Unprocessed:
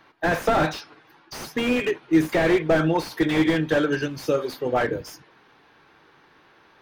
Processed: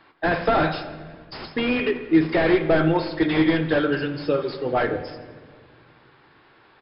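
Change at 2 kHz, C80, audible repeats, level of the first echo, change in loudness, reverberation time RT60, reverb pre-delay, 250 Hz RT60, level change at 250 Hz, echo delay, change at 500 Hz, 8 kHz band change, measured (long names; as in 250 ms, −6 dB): +0.5 dB, 11.5 dB, 2, −17.5 dB, +1.0 dB, 1.6 s, 3 ms, 2.6 s, +1.0 dB, 84 ms, +0.5 dB, below −40 dB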